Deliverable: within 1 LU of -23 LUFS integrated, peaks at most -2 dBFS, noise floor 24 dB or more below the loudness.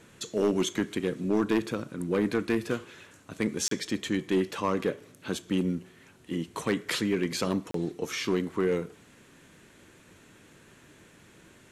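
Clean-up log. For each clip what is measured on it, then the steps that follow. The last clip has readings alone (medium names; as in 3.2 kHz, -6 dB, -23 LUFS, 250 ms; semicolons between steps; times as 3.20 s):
clipped samples 0.6%; clipping level -18.5 dBFS; dropouts 2; longest dropout 33 ms; loudness -30.0 LUFS; peak level -18.5 dBFS; loudness target -23.0 LUFS
-> clip repair -18.5 dBFS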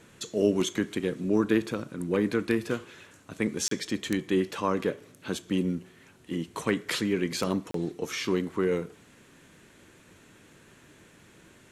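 clipped samples 0.0%; dropouts 2; longest dropout 33 ms
-> interpolate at 3.68/7.71 s, 33 ms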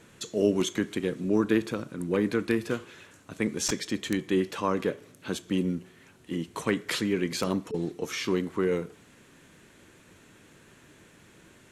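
dropouts 0; loudness -29.5 LUFS; peak level -9.5 dBFS; loudness target -23.0 LUFS
-> trim +6.5 dB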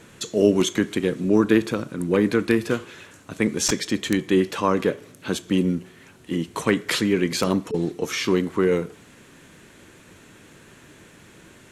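loudness -23.0 LUFS; peak level -3.0 dBFS; noise floor -50 dBFS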